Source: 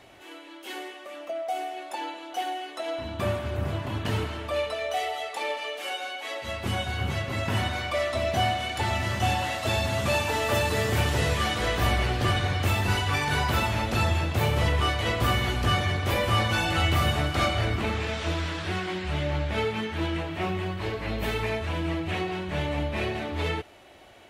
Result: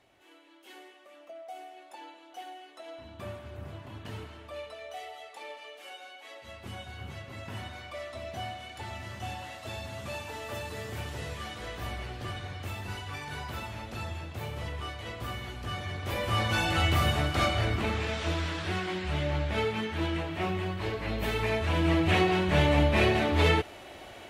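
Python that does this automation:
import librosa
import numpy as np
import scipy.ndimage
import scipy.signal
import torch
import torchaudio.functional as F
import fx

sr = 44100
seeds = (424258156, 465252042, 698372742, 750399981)

y = fx.gain(x, sr, db=fx.line((15.64, -13.0), (16.58, -2.0), (21.31, -2.0), (22.06, 5.5)))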